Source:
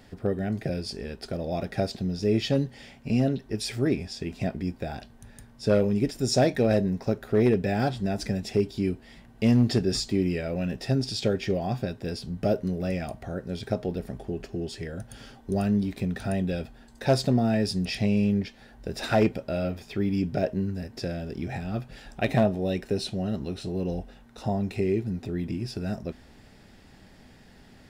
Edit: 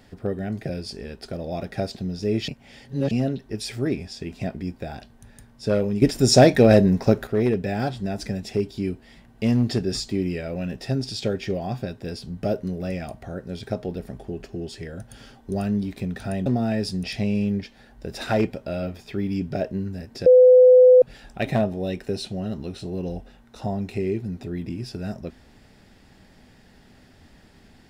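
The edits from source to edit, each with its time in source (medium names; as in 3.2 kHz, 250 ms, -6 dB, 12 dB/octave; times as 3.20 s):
2.48–3.11 s: reverse
6.02–7.27 s: gain +8.5 dB
16.46–17.28 s: delete
21.08–21.84 s: bleep 505 Hz -8 dBFS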